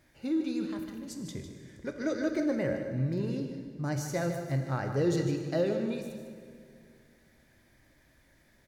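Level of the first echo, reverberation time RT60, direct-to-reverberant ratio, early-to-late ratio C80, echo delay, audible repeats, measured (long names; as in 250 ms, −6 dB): −9.5 dB, 2.1 s, 4.0 dB, 6.0 dB, 152 ms, 1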